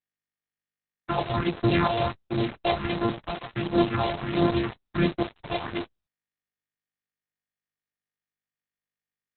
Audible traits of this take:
a buzz of ramps at a fixed pitch in blocks of 128 samples
phaser sweep stages 4, 1.4 Hz, lowest notch 250–2,500 Hz
a quantiser's noise floor 6 bits, dither none
Opus

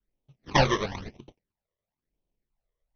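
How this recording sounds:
aliases and images of a low sample rate 1,400 Hz, jitter 20%
phaser sweep stages 12, 1 Hz, lowest notch 250–1,700 Hz
AC-3

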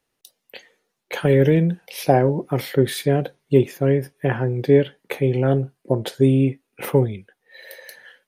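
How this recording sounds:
background noise floor −77 dBFS
spectral slope −7.0 dB per octave

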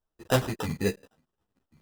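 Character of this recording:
aliases and images of a low sample rate 2,200 Hz, jitter 0%
a shimmering, thickened sound

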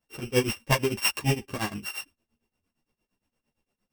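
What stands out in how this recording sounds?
a buzz of ramps at a fixed pitch in blocks of 16 samples
tremolo triangle 8.7 Hz, depth 100%
a shimmering, thickened sound

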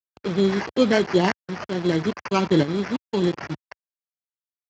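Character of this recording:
aliases and images of a low sample rate 3,700 Hz, jitter 0%
tremolo saw up 0.76 Hz, depth 70%
a quantiser's noise floor 6 bits, dither none
Speex

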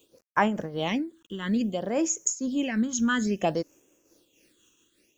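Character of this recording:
a quantiser's noise floor 10 bits, dither none
phaser sweep stages 8, 0.58 Hz, lowest notch 630–4,200 Hz
amplitude modulation by smooth noise

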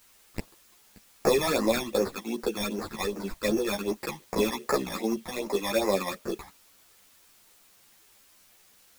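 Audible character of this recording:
aliases and images of a low sample rate 3,000 Hz, jitter 0%
phaser sweep stages 12, 2.6 Hz, lowest notch 430–3,500 Hz
a quantiser's noise floor 10 bits, dither triangular
a shimmering, thickened sound

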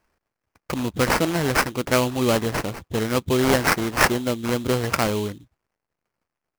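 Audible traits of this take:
aliases and images of a low sample rate 3,600 Hz, jitter 20%

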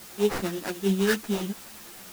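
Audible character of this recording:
aliases and images of a low sample rate 3,300 Hz, jitter 20%
tremolo triangle 9.2 Hz, depth 50%
a quantiser's noise floor 8 bits, dither triangular
a shimmering, thickened sound

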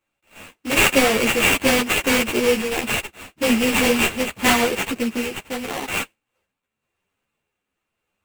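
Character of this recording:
a buzz of ramps at a fixed pitch in blocks of 16 samples
tremolo triangle 0.88 Hz, depth 35%
aliases and images of a low sample rate 5,200 Hz, jitter 20%
a shimmering, thickened sound

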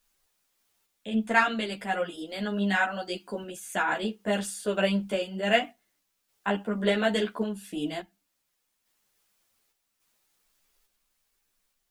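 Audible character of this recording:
a quantiser's noise floor 12 bits, dither triangular
sample-and-hold tremolo 3.5 Hz
a shimmering, thickened sound

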